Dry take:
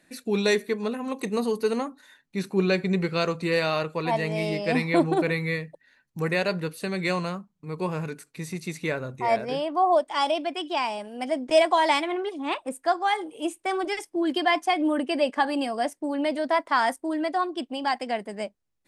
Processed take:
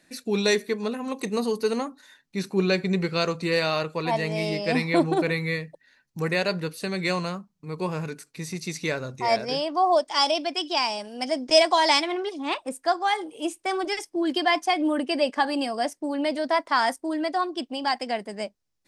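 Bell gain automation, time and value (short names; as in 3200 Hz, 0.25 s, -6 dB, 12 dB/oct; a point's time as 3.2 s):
bell 5300 Hz 0.84 oct
8.43 s +6 dB
8.96 s +15 dB
12.05 s +15 dB
12.82 s +7 dB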